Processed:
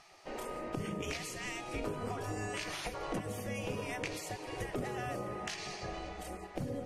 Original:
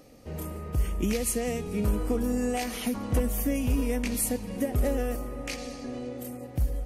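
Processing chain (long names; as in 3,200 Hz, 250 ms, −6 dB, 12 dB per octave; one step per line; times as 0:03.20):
low-shelf EQ 410 Hz +5.5 dB
gate on every frequency bin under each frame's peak −15 dB weak
downward compressor 5 to 1, threshold −39 dBFS, peak gain reduction 10.5 dB
high-frequency loss of the air 74 metres
level +5 dB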